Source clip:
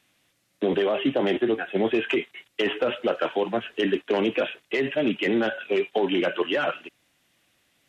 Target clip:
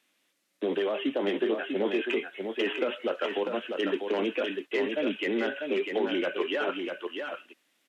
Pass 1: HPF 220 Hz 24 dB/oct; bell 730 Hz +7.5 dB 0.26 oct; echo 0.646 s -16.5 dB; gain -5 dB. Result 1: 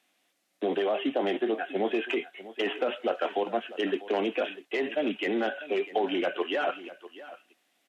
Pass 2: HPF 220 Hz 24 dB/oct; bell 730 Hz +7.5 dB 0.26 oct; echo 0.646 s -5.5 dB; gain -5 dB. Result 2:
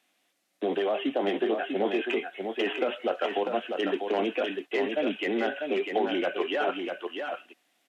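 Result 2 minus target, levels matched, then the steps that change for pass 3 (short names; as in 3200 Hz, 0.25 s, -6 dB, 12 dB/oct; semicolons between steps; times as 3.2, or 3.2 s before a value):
1000 Hz band +4.5 dB
change: bell 730 Hz -4 dB 0.26 oct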